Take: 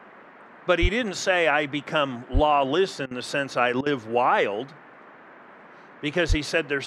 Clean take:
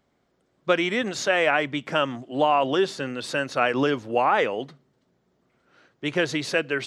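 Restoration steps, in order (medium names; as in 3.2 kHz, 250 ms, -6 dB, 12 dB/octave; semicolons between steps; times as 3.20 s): de-plosive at 0.81/2.33/6.28 s; interpolate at 3.06/3.81 s, 50 ms; noise print and reduce 21 dB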